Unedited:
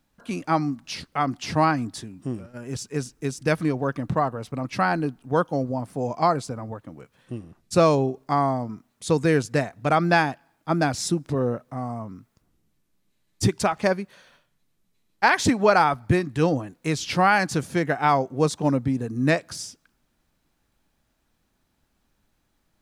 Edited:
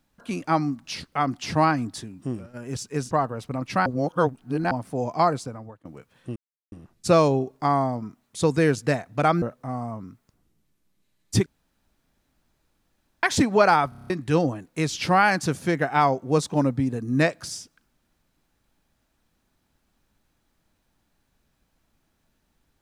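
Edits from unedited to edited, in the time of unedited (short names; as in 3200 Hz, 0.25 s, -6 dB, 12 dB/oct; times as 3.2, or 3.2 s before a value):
3.11–4.14 cut
4.89–5.74 reverse
6.37–6.88 fade out, to -16.5 dB
7.39 insert silence 0.36 s
10.09–11.5 cut
13.54–15.31 room tone
15.97 stutter in place 0.03 s, 7 plays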